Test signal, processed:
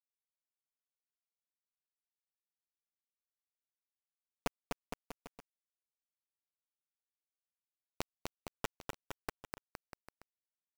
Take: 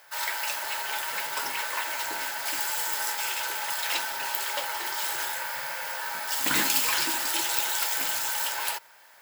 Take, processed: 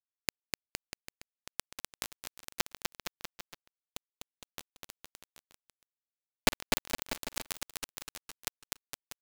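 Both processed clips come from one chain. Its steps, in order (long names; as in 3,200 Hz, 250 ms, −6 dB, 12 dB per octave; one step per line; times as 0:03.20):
channel vocoder with a chord as carrier major triad, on F3
reverb reduction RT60 1.8 s
parametric band 250 Hz +6 dB 0.53 octaves
comb filter 6.9 ms, depth 93%
downward compressor 6 to 1, threshold −28 dBFS
asymmetric clip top −35.5 dBFS
bit reduction 4 bits
gate pattern "..xx..x....x" 175 BPM −12 dB
on a send: bouncing-ball delay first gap 250 ms, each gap 0.85×, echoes 5
on the sum: level +9 dB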